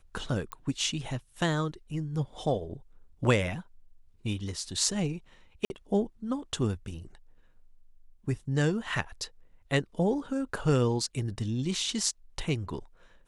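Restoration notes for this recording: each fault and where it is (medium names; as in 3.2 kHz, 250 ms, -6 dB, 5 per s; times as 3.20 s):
0.52 s: pop -22 dBFS
5.65–5.70 s: dropout 51 ms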